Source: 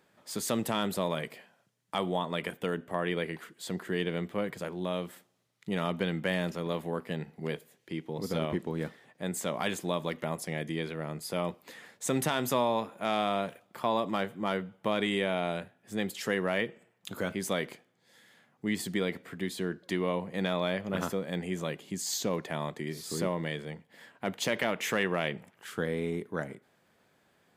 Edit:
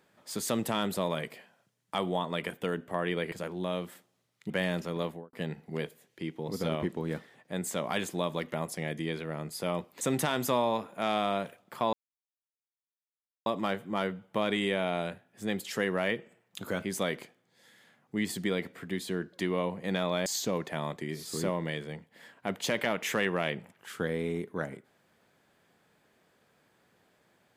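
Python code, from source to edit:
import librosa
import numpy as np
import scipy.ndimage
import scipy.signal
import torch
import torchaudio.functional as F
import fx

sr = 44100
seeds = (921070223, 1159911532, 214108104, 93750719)

y = fx.studio_fade_out(x, sr, start_s=6.72, length_s=0.31)
y = fx.edit(y, sr, fx.cut(start_s=3.32, length_s=1.21),
    fx.cut(start_s=5.71, length_s=0.49),
    fx.cut(start_s=11.71, length_s=0.33),
    fx.insert_silence(at_s=13.96, length_s=1.53),
    fx.cut(start_s=20.76, length_s=1.28), tone=tone)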